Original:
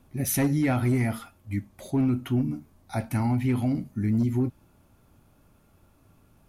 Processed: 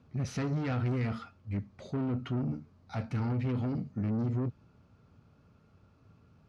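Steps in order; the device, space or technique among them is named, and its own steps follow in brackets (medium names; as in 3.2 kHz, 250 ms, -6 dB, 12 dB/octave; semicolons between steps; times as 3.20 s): guitar amplifier (valve stage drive 28 dB, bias 0.3; tone controls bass +9 dB, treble +15 dB; cabinet simulation 86–4100 Hz, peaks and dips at 320 Hz -4 dB, 450 Hz +7 dB, 1.3 kHz +6 dB, 3.5 kHz -6 dB); trim -5.5 dB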